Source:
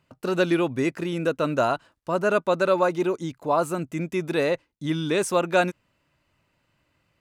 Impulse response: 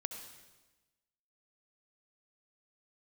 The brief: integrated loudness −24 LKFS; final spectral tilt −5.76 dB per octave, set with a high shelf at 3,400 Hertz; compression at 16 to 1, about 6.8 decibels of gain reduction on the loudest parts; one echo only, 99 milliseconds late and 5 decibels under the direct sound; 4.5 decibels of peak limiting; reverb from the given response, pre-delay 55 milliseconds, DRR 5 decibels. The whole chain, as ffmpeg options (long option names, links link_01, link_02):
-filter_complex "[0:a]highshelf=frequency=3400:gain=-5.5,acompressor=threshold=-23dB:ratio=16,alimiter=limit=-20dB:level=0:latency=1,aecho=1:1:99:0.562,asplit=2[link_01][link_02];[1:a]atrim=start_sample=2205,adelay=55[link_03];[link_02][link_03]afir=irnorm=-1:irlink=0,volume=-4.5dB[link_04];[link_01][link_04]amix=inputs=2:normalize=0,volume=4.5dB"